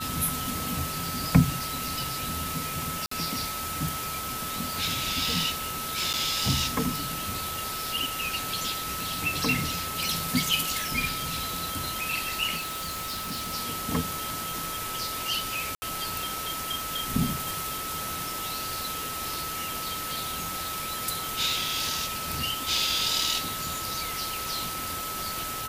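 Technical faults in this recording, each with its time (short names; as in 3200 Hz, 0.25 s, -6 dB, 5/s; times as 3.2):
tone 1300 Hz -35 dBFS
3.06–3.11 gap 54 ms
6.13–6.14 gap 8.3 ms
12.56–13.54 clipped -29.5 dBFS
15.75–15.82 gap 70 ms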